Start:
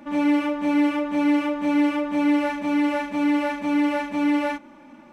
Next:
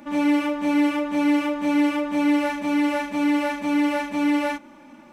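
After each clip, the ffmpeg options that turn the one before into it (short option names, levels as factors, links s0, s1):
-af "highshelf=f=4700:g=7.5"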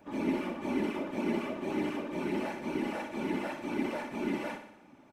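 -af "afftfilt=real='hypot(re,im)*cos(2*PI*random(0))':imag='hypot(re,im)*sin(2*PI*random(1))':win_size=512:overlap=0.75,aecho=1:1:60|120|180|240|300|360|420:0.335|0.198|0.117|0.0688|0.0406|0.0239|0.0141,volume=0.473"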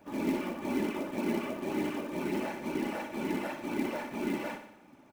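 -af "acrusher=bits=5:mode=log:mix=0:aa=0.000001"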